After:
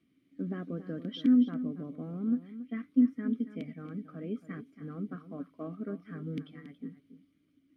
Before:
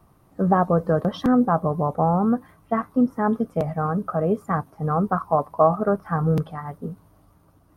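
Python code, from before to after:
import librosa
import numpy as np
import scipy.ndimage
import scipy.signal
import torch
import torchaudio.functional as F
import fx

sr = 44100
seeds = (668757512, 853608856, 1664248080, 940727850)

p1 = fx.vowel_filter(x, sr, vowel='i')
p2 = fx.high_shelf(p1, sr, hz=2300.0, db=9.0)
y = p2 + fx.echo_single(p2, sr, ms=278, db=-13.0, dry=0)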